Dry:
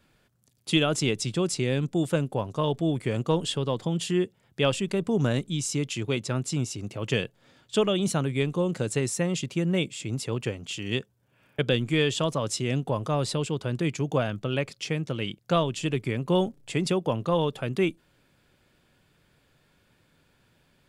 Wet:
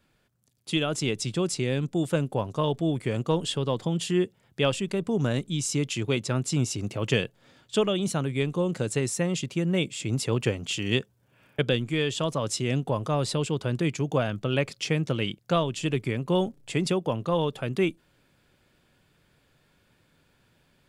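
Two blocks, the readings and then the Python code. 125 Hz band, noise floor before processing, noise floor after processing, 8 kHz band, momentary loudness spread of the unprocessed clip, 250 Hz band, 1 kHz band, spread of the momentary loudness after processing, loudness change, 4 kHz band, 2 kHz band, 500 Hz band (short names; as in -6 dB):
+0.5 dB, -66 dBFS, -67 dBFS, +0.5 dB, 6 LU, 0.0 dB, -0.5 dB, 3 LU, 0.0 dB, 0.0 dB, 0.0 dB, 0.0 dB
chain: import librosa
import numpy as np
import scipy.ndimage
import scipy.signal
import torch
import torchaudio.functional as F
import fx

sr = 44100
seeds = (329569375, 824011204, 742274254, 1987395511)

y = fx.rider(x, sr, range_db=10, speed_s=0.5)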